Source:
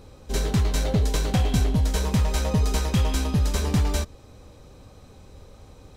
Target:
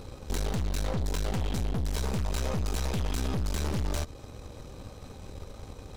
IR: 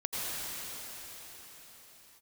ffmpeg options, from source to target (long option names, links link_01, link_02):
-af "acompressor=threshold=-26dB:ratio=6,aeval=exprs='(tanh(63.1*val(0)+0.8)-tanh(0.8))/63.1':channel_layout=same,volume=8dB"